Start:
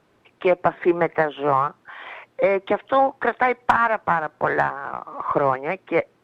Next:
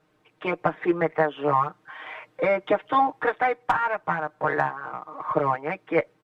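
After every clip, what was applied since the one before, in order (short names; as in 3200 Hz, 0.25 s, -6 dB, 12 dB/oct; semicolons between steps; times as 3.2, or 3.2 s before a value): comb 6.5 ms, depth 89%; AGC; gain -7.5 dB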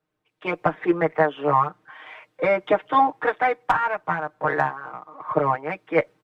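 three-band expander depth 40%; gain +2 dB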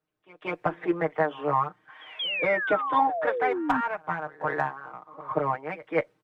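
painted sound fall, 2.19–3.81, 240–3400 Hz -24 dBFS; pre-echo 0.183 s -20.5 dB; gain -5.5 dB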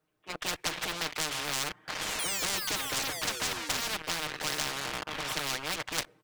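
sample leveller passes 3; spectral compressor 10:1; gain -1.5 dB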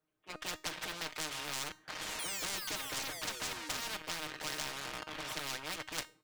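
resonator 310 Hz, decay 0.34 s, harmonics all, mix 60%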